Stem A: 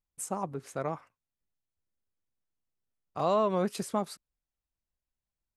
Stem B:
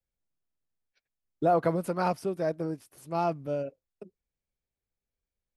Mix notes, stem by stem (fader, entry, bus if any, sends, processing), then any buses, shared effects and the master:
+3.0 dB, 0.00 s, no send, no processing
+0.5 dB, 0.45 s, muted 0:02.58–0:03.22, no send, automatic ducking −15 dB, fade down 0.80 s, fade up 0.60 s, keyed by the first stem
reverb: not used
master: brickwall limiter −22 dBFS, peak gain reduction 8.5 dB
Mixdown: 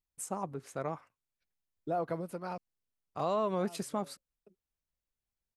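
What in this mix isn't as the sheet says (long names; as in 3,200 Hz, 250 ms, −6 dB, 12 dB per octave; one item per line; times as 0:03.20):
stem A +3.0 dB → −3.0 dB
stem B +0.5 dB → −9.5 dB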